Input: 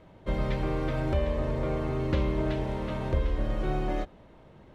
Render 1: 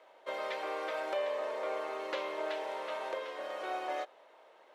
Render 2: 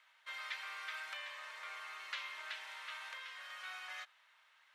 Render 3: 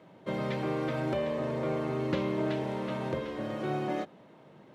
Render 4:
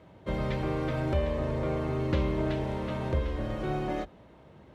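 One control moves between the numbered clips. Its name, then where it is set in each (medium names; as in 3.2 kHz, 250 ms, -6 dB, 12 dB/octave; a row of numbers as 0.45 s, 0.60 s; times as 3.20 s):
high-pass, cutoff frequency: 520 Hz, 1.4 kHz, 140 Hz, 53 Hz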